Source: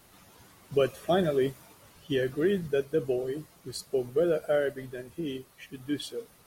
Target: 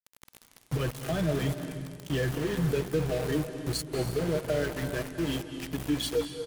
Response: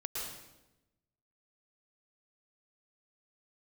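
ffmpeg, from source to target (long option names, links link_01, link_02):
-filter_complex "[0:a]aecho=1:1:6.4:0.67,acrossover=split=210[link_01][link_02];[link_02]acompressor=threshold=-31dB:ratio=6[link_03];[link_01][link_03]amix=inputs=2:normalize=0,alimiter=level_in=3dB:limit=-24dB:level=0:latency=1,volume=-3dB,flanger=delay=6.4:depth=1.8:regen=-17:speed=0.66:shape=sinusoidal,aeval=exprs='val(0)+0.00316*(sin(2*PI*60*n/s)+sin(2*PI*2*60*n/s)/2+sin(2*PI*3*60*n/s)/3+sin(2*PI*4*60*n/s)/4+sin(2*PI*5*60*n/s)/5)':channel_layout=same,aeval=exprs='val(0)*gte(abs(val(0)),0.0075)':channel_layout=same,asplit=2[link_04][link_05];[1:a]atrim=start_sample=2205,asetrate=24696,aresample=44100[link_06];[link_05][link_06]afir=irnorm=-1:irlink=0,volume=-12dB[link_07];[link_04][link_07]amix=inputs=2:normalize=0,volume=7.5dB"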